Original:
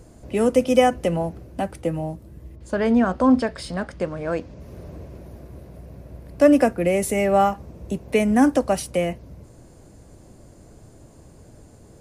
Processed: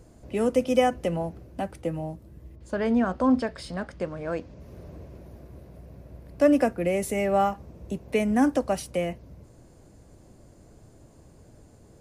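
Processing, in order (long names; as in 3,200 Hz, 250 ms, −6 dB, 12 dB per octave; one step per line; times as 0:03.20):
parametric band 9,500 Hz −2.5 dB 0.77 octaves
level −5 dB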